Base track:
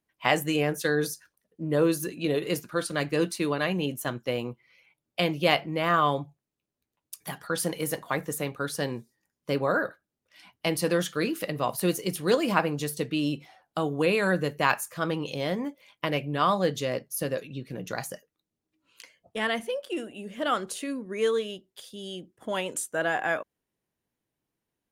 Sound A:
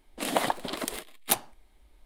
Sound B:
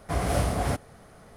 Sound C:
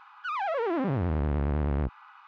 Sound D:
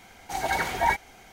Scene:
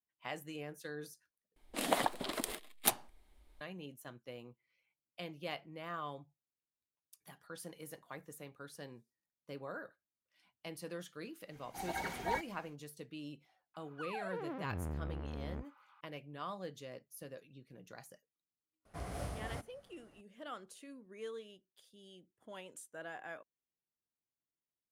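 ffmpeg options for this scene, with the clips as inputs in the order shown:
ffmpeg -i bed.wav -i cue0.wav -i cue1.wav -i cue2.wav -i cue3.wav -filter_complex "[0:a]volume=-19.5dB[link_01];[4:a]equalizer=frequency=220:width=1.1:gain=6.5[link_02];[3:a]aphaser=in_gain=1:out_gain=1:delay=4.3:decay=0.28:speed=0.9:type=sinusoidal[link_03];[link_01]asplit=2[link_04][link_05];[link_04]atrim=end=1.564[link_06];[1:a]atrim=end=2.05,asetpts=PTS-STARTPTS,volume=-5.5dB[link_07];[link_05]atrim=start=3.606[link_08];[link_02]atrim=end=1.32,asetpts=PTS-STARTPTS,volume=-14dB,afade=type=in:duration=0.1,afade=type=out:start_time=1.22:duration=0.1,adelay=11450[link_09];[link_03]atrim=end=2.27,asetpts=PTS-STARTPTS,volume=-15dB,afade=type=in:duration=0.004:curve=hsin,afade=type=out:start_time=2.266:duration=0.004:curve=hsin,adelay=13740[link_10];[2:a]atrim=end=1.36,asetpts=PTS-STARTPTS,volume=-16.5dB,afade=type=in:duration=0.004:curve=hsin,afade=type=out:start_time=1.356:duration=0.004:curve=hsin,adelay=18850[link_11];[link_06][link_07]acrossfade=duration=0.004:curve1=hsin:curve2=hsin[link_12];[link_12][link_08]acrossfade=duration=0.004:curve1=hsin:curve2=hsin[link_13];[link_13][link_09][link_10][link_11]amix=inputs=4:normalize=0" out.wav

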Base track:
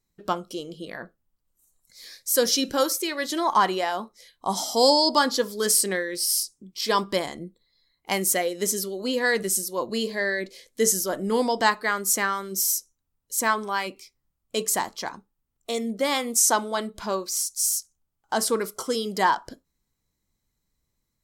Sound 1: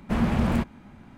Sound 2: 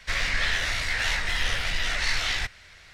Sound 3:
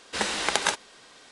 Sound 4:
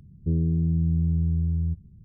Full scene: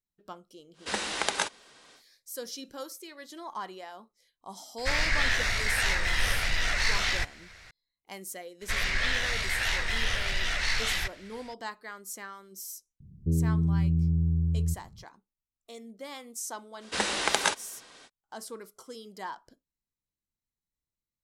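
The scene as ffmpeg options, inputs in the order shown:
ffmpeg -i bed.wav -i cue0.wav -i cue1.wav -i cue2.wav -i cue3.wav -filter_complex "[3:a]asplit=2[link_01][link_02];[2:a]asplit=2[link_03][link_04];[0:a]volume=-17.5dB[link_05];[link_03]equalizer=frequency=3200:width=2.8:gain=-4[link_06];[link_01]atrim=end=1.31,asetpts=PTS-STARTPTS,volume=-4dB,afade=type=in:duration=0.1,afade=type=out:start_time=1.21:duration=0.1,adelay=730[link_07];[link_06]atrim=end=2.93,asetpts=PTS-STARTPTS,afade=type=in:duration=0.004:curve=hsin,afade=type=out:start_time=2.926:duration=0.004:curve=hsin,adelay=4780[link_08];[link_04]atrim=end=2.93,asetpts=PTS-STARTPTS,volume=-2.5dB,afade=type=in:duration=0.004:curve=hsin,afade=type=out:start_time=2.926:duration=0.004:curve=hsin,adelay=8610[link_09];[4:a]atrim=end=2.04,asetpts=PTS-STARTPTS,volume=-2dB,afade=type=in:duration=0.004:curve=hsin,afade=type=out:start_time=2.036:duration=0.004:curve=hsin,adelay=573300S[link_10];[link_02]atrim=end=1.31,asetpts=PTS-STARTPTS,volume=-1dB,afade=type=in:duration=0.05,afade=type=out:start_time=1.26:duration=0.05,adelay=16790[link_11];[link_05][link_07][link_08][link_09][link_10][link_11]amix=inputs=6:normalize=0" out.wav

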